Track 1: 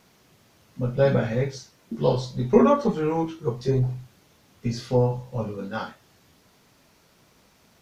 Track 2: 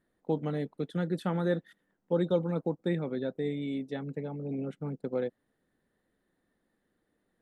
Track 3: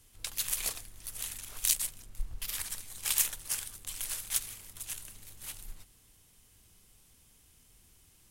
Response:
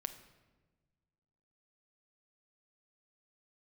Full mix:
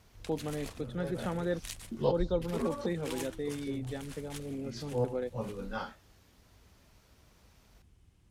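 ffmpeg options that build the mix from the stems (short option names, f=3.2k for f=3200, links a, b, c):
-filter_complex "[0:a]volume=-6.5dB[a];[1:a]volume=-3dB,asplit=2[b][c];[2:a]highpass=42,aemphasis=mode=reproduction:type=riaa,volume=-4dB[d];[c]apad=whole_len=344826[e];[a][e]sidechaincompress=threshold=-47dB:ratio=8:attack=26:release=102[f];[f][b][d]amix=inputs=3:normalize=0,lowshelf=f=110:g=-7.5"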